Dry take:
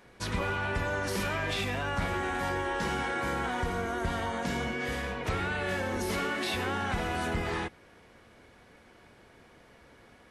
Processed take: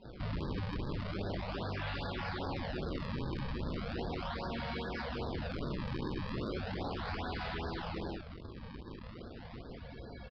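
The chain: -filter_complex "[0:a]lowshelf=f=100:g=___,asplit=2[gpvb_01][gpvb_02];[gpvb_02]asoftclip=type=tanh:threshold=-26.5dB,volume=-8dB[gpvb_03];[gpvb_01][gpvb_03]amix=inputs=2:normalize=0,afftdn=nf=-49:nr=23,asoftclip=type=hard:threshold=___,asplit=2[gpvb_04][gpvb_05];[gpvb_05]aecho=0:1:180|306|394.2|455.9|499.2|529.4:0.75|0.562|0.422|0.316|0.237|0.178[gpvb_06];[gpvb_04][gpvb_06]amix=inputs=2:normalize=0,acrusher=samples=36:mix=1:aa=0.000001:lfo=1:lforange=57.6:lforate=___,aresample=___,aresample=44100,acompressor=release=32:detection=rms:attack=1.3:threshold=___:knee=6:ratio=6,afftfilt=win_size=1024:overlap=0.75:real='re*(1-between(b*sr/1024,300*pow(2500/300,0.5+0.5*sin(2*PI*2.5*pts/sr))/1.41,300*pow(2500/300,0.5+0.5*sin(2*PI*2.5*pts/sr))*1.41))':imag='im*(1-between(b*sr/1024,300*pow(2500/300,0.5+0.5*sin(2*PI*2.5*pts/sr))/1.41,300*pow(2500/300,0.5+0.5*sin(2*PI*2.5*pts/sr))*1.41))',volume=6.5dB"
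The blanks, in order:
4.5, -31dB, 0.37, 11025, -42dB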